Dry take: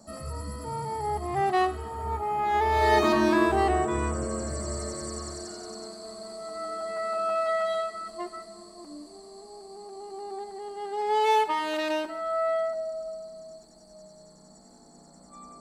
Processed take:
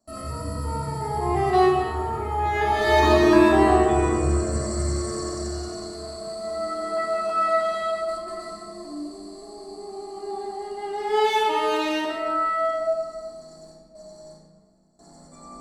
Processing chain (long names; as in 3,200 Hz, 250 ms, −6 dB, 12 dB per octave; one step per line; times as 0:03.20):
noise gate with hold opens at −42 dBFS
hum removal 110.1 Hz, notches 38
0:08.04–0:08.53: compressor whose output falls as the input rises −41 dBFS, ratio −0.5
rectangular room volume 1,600 cubic metres, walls mixed, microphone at 3.1 metres